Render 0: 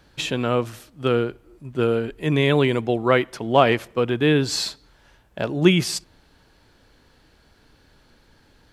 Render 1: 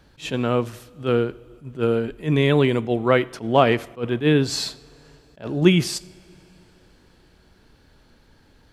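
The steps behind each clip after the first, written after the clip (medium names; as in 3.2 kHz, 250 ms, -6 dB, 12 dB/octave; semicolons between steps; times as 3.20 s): bass shelf 470 Hz +3.5 dB; two-slope reverb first 0.53 s, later 4.1 s, from -17 dB, DRR 17 dB; attacks held to a fixed rise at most 250 dB/s; trim -1.5 dB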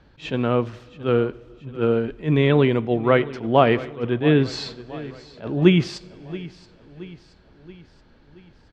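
distance through air 170 m; feedback delay 676 ms, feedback 52%, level -17.5 dB; trim +1 dB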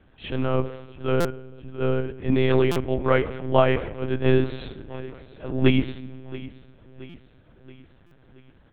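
simulated room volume 1000 m³, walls mixed, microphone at 0.31 m; monotone LPC vocoder at 8 kHz 130 Hz; buffer glitch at 1.20/2.71/7.09/8.06 s, samples 256, times 8; trim -2.5 dB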